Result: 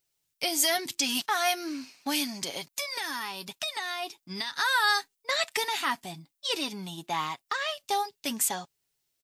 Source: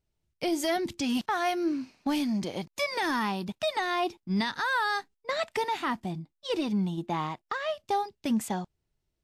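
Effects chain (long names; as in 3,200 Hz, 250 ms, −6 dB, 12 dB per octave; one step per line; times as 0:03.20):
spectral tilt +4 dB per octave
0:02.48–0:04.57: downward compressor 6 to 1, threshold −31 dBFS, peak gain reduction 9.5 dB
comb filter 7.2 ms, depth 41%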